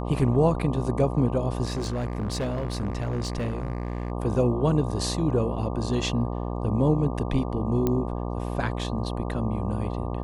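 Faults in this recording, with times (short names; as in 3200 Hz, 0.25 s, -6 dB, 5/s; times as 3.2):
buzz 60 Hz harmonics 20 -30 dBFS
1.65–4.12 clipped -24 dBFS
7.87 pop -12 dBFS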